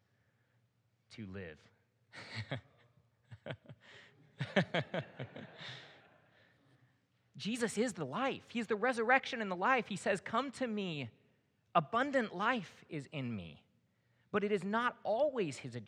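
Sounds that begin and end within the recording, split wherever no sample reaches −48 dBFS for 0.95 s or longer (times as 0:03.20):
0:01.11–0:05.88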